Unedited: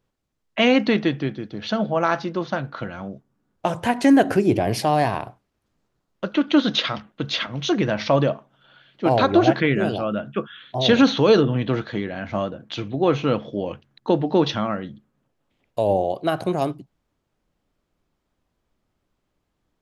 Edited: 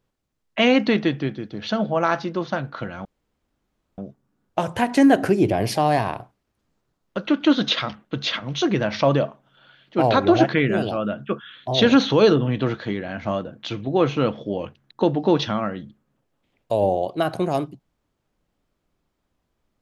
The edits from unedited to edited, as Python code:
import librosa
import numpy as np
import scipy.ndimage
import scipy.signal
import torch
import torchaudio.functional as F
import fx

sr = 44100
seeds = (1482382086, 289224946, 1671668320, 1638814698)

y = fx.edit(x, sr, fx.insert_room_tone(at_s=3.05, length_s=0.93), tone=tone)